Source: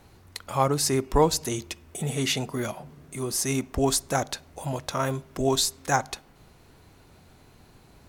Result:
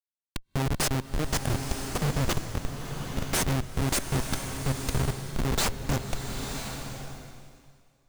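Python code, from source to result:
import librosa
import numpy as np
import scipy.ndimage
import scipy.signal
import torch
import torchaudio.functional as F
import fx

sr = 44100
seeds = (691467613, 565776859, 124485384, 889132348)

y = fx.bass_treble(x, sr, bass_db=14, treble_db=13)
y = fx.transient(y, sr, attack_db=5, sustain_db=-10)
y = fx.schmitt(y, sr, flips_db=-12.5)
y = fx.rev_bloom(y, sr, seeds[0], attack_ms=1010, drr_db=5.0)
y = F.gain(torch.from_numpy(y), -6.5).numpy()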